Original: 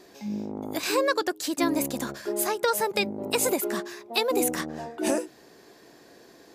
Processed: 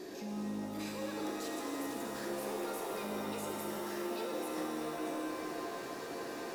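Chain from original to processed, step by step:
parametric band 310 Hz +6 dB 1.2 octaves
brickwall limiter −39.5 dBFS, peak gain reduction 30 dB
feedback echo with a low-pass in the loop 125 ms, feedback 73%, level −13 dB
reverb with rising layers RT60 3.8 s, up +7 semitones, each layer −2 dB, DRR −1 dB
level +1 dB

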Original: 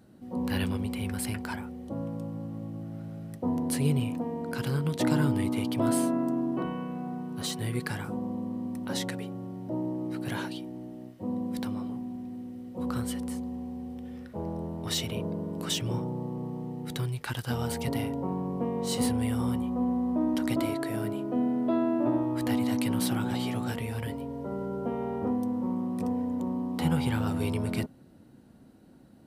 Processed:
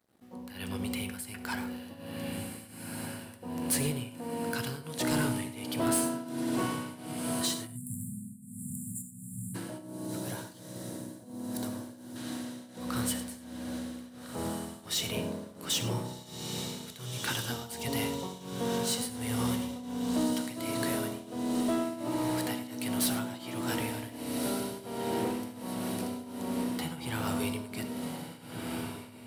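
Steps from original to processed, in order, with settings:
dead-zone distortion −56.5 dBFS
spectral tilt +2 dB per octave
feedback delay with all-pass diffusion 1,532 ms, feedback 64%, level −8 dB
automatic gain control gain up to 8.5 dB
shaped tremolo triangle 1.4 Hz, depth 90%
soft clipping −18 dBFS, distortion −16 dB
0:07.67–0:09.55: time-frequency box erased 250–7,000 Hz
0:09.78–0:12.16: parametric band 2,500 Hz −11 dB 2.4 octaves
reverb whose tail is shaped and stops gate 130 ms flat, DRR 9.5 dB
level −4.5 dB

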